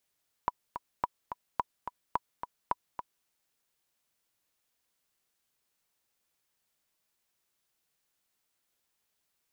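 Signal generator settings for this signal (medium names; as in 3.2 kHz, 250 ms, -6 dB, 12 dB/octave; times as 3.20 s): metronome 215 bpm, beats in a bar 2, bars 5, 979 Hz, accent 9 dB -14 dBFS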